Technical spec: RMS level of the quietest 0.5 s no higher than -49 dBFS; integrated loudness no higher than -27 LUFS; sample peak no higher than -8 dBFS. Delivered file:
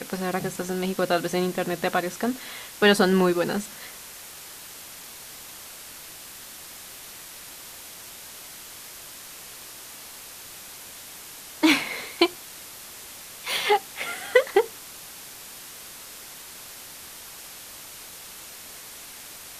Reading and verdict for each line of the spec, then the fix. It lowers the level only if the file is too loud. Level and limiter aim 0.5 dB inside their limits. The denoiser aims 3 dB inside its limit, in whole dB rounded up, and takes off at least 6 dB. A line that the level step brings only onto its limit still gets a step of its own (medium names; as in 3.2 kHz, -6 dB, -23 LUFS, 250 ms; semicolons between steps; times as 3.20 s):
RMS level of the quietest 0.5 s -42 dBFS: fail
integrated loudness -24.5 LUFS: fail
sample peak -4.0 dBFS: fail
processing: noise reduction 7 dB, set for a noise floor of -42 dBFS; trim -3 dB; peak limiter -8.5 dBFS